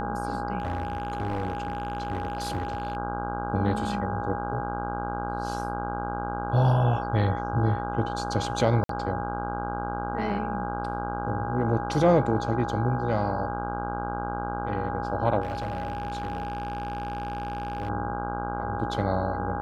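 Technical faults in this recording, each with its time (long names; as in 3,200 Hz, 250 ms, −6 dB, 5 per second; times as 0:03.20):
mains buzz 60 Hz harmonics 27 −33 dBFS
whistle 820 Hz −32 dBFS
0:00.58–0:02.97: clipping −24.5 dBFS
0:08.84–0:08.89: drop-out 53 ms
0:15.41–0:17.90: clipping −26.5 dBFS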